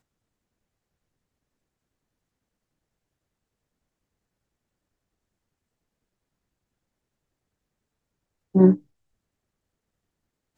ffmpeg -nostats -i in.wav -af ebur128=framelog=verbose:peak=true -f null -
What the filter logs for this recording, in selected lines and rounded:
Integrated loudness:
  I:         -19.7 LUFS
  Threshold: -30.4 LUFS
Loudness range:
  LRA:         0.4 LU
  Threshold: -46.9 LUFS
  LRA low:   -27.0 LUFS
  LRA high:  -26.7 LUFS
True peak:
  Peak:       -4.1 dBFS